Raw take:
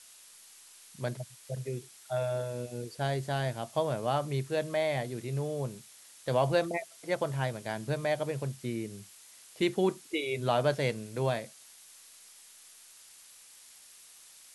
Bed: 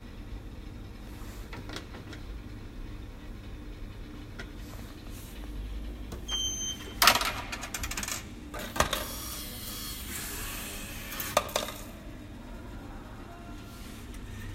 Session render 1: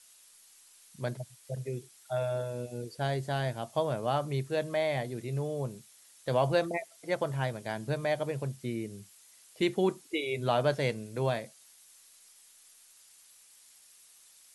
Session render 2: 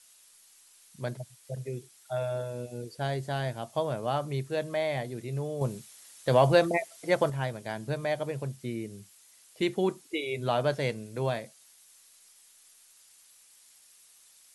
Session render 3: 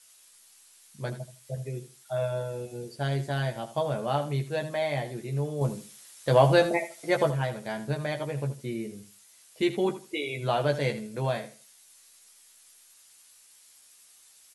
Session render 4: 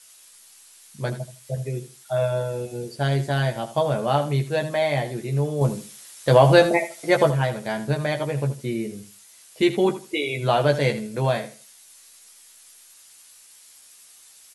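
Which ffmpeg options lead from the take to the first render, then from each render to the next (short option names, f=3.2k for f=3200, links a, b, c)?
-af "afftdn=nr=6:nf=-55"
-filter_complex "[0:a]asettb=1/sr,asplit=3[a][b][c];[a]atrim=end=5.614[d];[b]atrim=start=5.61:end=7.3,asetpts=PTS-STARTPTS,afade=t=in:d=0.004:c=qsin,afade=t=out:st=1.686:d=0.004:c=qsin,acontrast=47[e];[c]atrim=start=7.296[f];[d][e]acrossfade=d=0.004:c1=hsin:c2=qsin[g];[g][f]acrossfade=d=0.004:c1=qsin:c2=hsin"
-filter_complex "[0:a]asplit=2[a][b];[b]adelay=14,volume=-4.5dB[c];[a][c]amix=inputs=2:normalize=0,aecho=1:1:79|158|237:0.224|0.0493|0.0108"
-af "volume=6.5dB,alimiter=limit=-3dB:level=0:latency=1"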